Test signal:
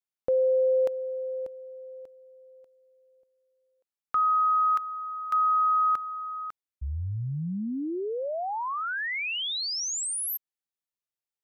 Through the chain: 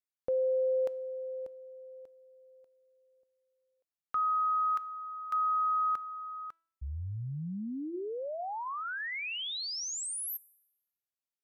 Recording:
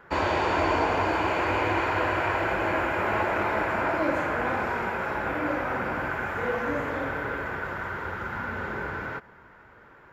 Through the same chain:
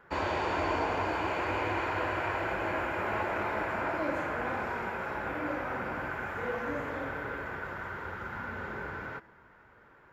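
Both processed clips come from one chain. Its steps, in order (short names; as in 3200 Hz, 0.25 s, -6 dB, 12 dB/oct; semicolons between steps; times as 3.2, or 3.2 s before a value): de-hum 328.7 Hz, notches 39; gain -6 dB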